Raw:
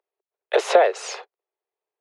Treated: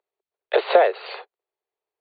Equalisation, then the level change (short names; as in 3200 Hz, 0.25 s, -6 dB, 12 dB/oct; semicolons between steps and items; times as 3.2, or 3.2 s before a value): brick-wall FIR low-pass 4700 Hz; 0.0 dB